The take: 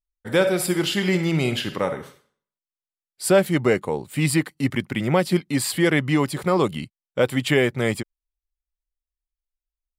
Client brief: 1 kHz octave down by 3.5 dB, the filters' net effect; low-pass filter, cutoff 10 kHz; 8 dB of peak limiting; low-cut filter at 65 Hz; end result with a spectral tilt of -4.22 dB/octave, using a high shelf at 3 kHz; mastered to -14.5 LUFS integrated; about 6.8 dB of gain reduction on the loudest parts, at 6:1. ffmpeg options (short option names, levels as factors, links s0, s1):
-af "highpass=65,lowpass=10000,equalizer=f=1000:t=o:g=-5.5,highshelf=f=3000:g=6,acompressor=threshold=0.0891:ratio=6,volume=5.31,alimiter=limit=0.668:level=0:latency=1"